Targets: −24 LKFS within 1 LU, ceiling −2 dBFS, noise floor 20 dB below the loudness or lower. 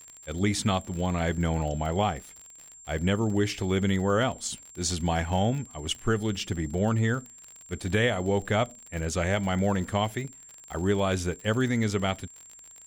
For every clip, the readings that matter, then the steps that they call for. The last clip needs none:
crackle rate 50 per second; interfering tone 7,400 Hz; level of the tone −47 dBFS; integrated loudness −28.0 LKFS; sample peak −13.5 dBFS; target loudness −24.0 LKFS
→ click removal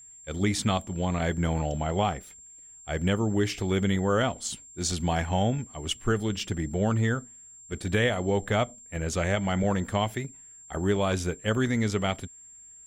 crackle rate 0 per second; interfering tone 7,400 Hz; level of the tone −47 dBFS
→ notch filter 7,400 Hz, Q 30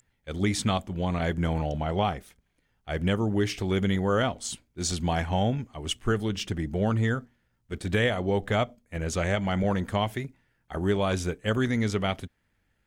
interfering tone none found; integrated loudness −28.0 LKFS; sample peak −13.5 dBFS; target loudness −24.0 LKFS
→ level +4 dB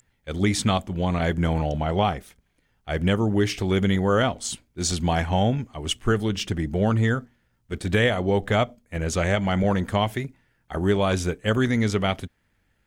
integrated loudness −24.0 LKFS; sample peak −9.5 dBFS; background noise floor −69 dBFS

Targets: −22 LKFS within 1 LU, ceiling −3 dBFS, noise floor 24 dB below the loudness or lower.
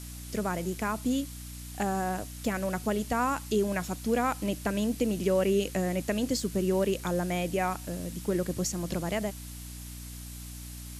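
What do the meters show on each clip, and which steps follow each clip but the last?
mains hum 60 Hz; hum harmonics up to 300 Hz; level of the hum −40 dBFS; background noise floor −42 dBFS; target noise floor −54 dBFS; integrated loudness −30.0 LKFS; sample peak −14.0 dBFS; target loudness −22.0 LKFS
→ mains-hum notches 60/120/180/240/300 Hz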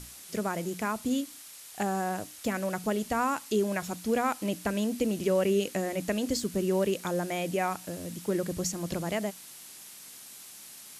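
mains hum none found; background noise floor −48 dBFS; target noise floor −55 dBFS
→ broadband denoise 7 dB, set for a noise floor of −48 dBFS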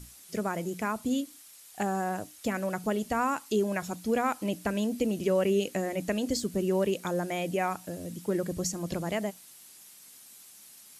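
background noise floor −52 dBFS; target noise floor −55 dBFS
→ broadband denoise 6 dB, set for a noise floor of −52 dBFS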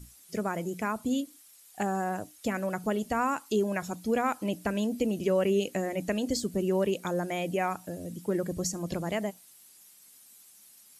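background noise floor −56 dBFS; integrated loudness −30.5 LKFS; sample peak −14.5 dBFS; target loudness −22.0 LKFS
→ level +8.5 dB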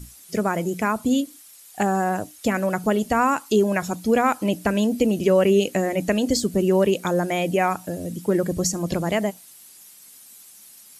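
integrated loudness −22.0 LKFS; sample peak −6.0 dBFS; background noise floor −48 dBFS

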